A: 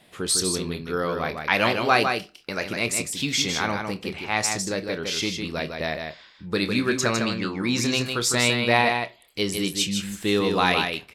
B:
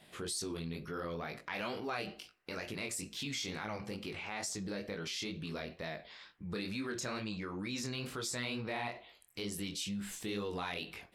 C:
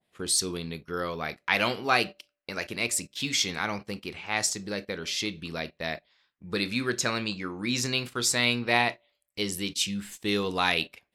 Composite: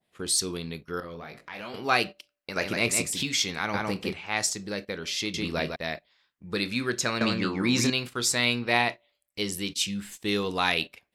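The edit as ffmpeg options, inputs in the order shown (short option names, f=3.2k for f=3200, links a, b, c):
-filter_complex "[0:a]asplit=4[a][b][c][d];[2:a]asplit=6[e][f][g][h][i][j];[e]atrim=end=1.002[k];[1:a]atrim=start=0.998:end=1.742[l];[f]atrim=start=1.738:end=2.562[m];[a]atrim=start=2.558:end=3.232[n];[g]atrim=start=3.228:end=3.742[o];[b]atrim=start=3.738:end=4.142[p];[h]atrim=start=4.138:end=5.342[q];[c]atrim=start=5.338:end=5.762[r];[i]atrim=start=5.758:end=7.212[s];[d]atrim=start=7.208:end=7.902[t];[j]atrim=start=7.898[u];[k][l]acrossfade=d=0.004:c1=hsin:c2=hsin[v];[v][m]acrossfade=d=0.004:c1=hsin:c2=hsin[w];[w][n]acrossfade=d=0.004:c1=hsin:c2=hsin[x];[x][o]acrossfade=d=0.004:c1=hsin:c2=hsin[y];[y][p]acrossfade=d=0.004:c1=hsin:c2=hsin[z];[z][q]acrossfade=d=0.004:c1=hsin:c2=hsin[aa];[aa][r]acrossfade=d=0.004:c1=hsin:c2=hsin[ab];[ab][s]acrossfade=d=0.004:c1=hsin:c2=hsin[ac];[ac][t]acrossfade=d=0.004:c1=hsin:c2=hsin[ad];[ad][u]acrossfade=d=0.004:c1=hsin:c2=hsin"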